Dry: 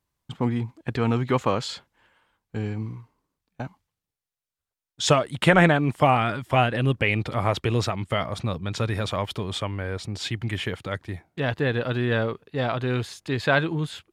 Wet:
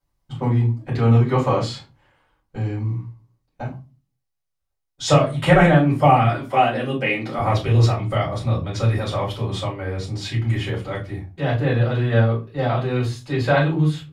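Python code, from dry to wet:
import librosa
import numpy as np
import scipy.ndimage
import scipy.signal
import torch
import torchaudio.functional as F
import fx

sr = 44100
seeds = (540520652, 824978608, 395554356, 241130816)

y = fx.highpass(x, sr, hz=180.0, slope=24, at=(6.26, 7.39))
y = fx.room_shoebox(y, sr, seeds[0], volume_m3=120.0, walls='furnished', distance_m=5.1)
y = y * librosa.db_to_amplitude(-9.5)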